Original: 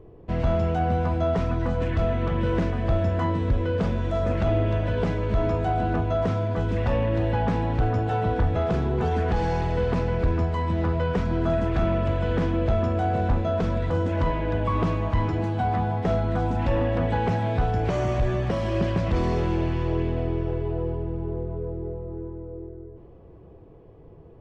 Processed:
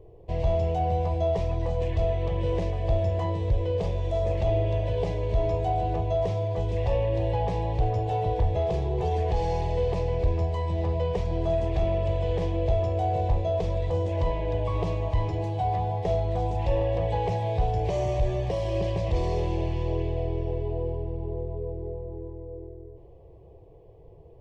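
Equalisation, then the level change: static phaser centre 580 Hz, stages 4; 0.0 dB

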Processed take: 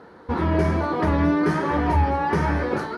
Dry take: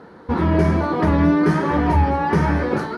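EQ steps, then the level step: peaking EQ 180 Hz -4.5 dB 1.4 oct; -2.0 dB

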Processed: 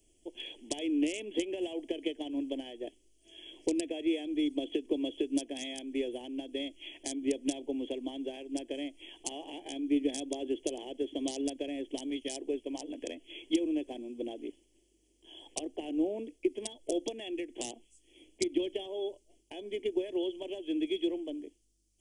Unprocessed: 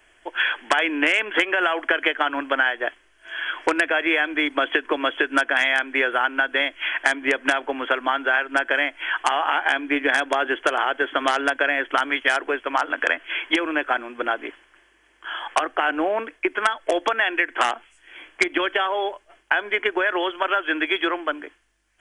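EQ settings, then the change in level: Chebyshev band-stop 310–5700 Hz, order 2; -2.0 dB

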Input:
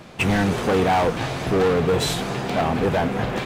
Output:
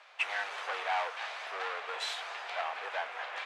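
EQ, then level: high-pass 600 Hz 24 dB/octave; low-pass 2 kHz 12 dB/octave; differentiator; +7.0 dB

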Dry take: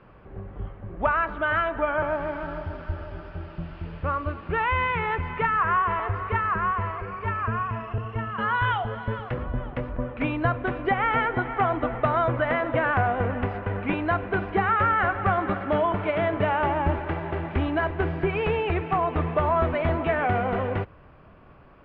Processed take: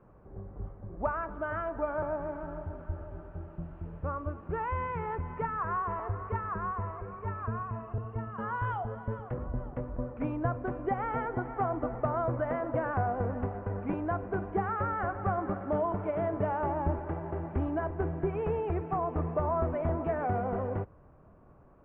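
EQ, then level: low-pass 1 kHz 12 dB/octave; -5.5 dB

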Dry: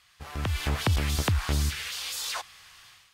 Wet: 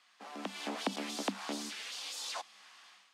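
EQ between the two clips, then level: low-pass 8.1 kHz 12 dB/octave; dynamic bell 1.5 kHz, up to -6 dB, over -48 dBFS, Q 0.84; rippled Chebyshev high-pass 190 Hz, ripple 6 dB; 0.0 dB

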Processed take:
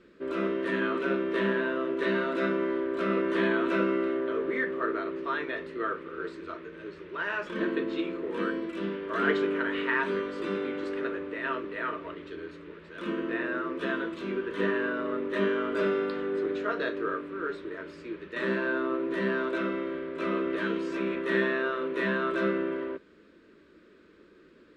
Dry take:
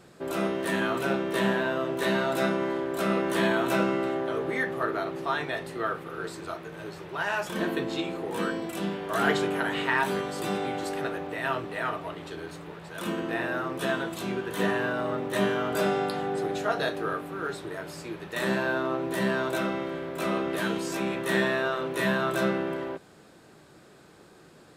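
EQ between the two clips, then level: low-pass 2.5 kHz 12 dB/octave; dynamic bell 870 Hz, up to +6 dB, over -41 dBFS, Q 0.9; static phaser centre 320 Hz, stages 4; 0.0 dB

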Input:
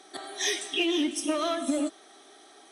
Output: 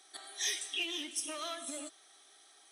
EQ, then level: pre-emphasis filter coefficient 0.97; treble shelf 3.3 kHz -10.5 dB; +6.0 dB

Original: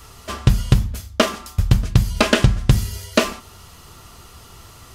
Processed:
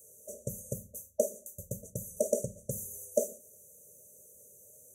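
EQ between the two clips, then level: high-pass 420 Hz 12 dB/octave; brick-wall FIR band-stop 630–5800 Hz; static phaser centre 1.2 kHz, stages 6; -2.5 dB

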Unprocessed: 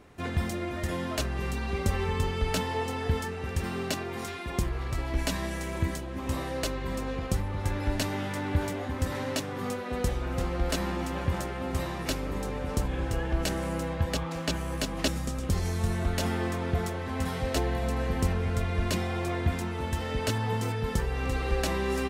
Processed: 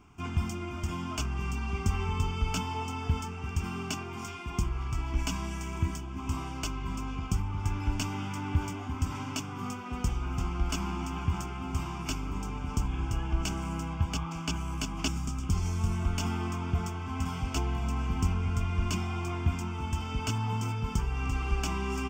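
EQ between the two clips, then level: static phaser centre 2.7 kHz, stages 8; 0.0 dB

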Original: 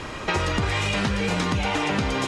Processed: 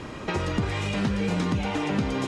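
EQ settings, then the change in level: peaking EQ 210 Hz +8.5 dB 2.7 oct; -7.5 dB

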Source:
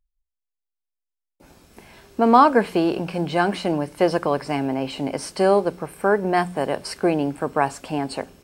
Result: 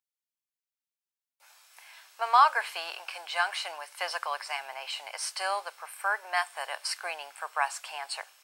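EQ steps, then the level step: Bessel high-pass 1.3 kHz, order 6; 0.0 dB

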